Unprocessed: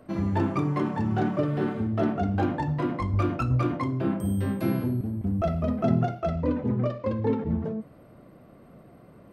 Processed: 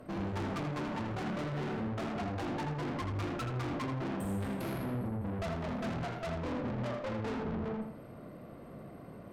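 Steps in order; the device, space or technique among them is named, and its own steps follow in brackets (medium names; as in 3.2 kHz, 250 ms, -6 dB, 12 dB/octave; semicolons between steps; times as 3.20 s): rockabilly slapback (valve stage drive 38 dB, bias 0.35; tape echo 81 ms, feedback 33%, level -4 dB, low-pass 4.2 kHz); trim +2.5 dB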